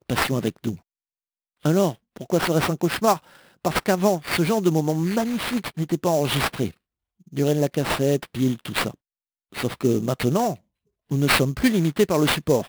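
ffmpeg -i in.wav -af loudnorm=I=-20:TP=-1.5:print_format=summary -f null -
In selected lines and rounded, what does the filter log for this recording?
Input Integrated:    -22.5 LUFS
Input True Peak:      -4.9 dBTP
Input LRA:             3.0 LU
Input Threshold:     -32.8 LUFS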